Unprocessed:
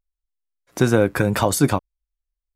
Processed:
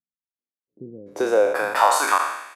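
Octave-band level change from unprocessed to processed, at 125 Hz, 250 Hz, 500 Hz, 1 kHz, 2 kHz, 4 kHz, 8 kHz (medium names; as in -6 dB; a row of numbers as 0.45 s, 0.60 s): under -25 dB, -12.5 dB, +0.5 dB, +7.5 dB, +2.5 dB, 0.0 dB, -1.5 dB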